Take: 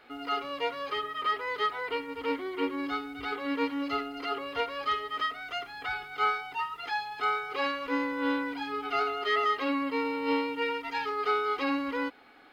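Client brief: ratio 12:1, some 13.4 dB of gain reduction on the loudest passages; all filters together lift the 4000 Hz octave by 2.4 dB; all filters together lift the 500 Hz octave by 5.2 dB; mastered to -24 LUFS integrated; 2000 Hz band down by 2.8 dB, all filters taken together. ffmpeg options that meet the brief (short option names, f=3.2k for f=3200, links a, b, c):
-af "equalizer=f=500:t=o:g=6,equalizer=f=2k:t=o:g=-5.5,equalizer=f=4k:t=o:g=6,acompressor=threshold=-35dB:ratio=12,volume=15dB"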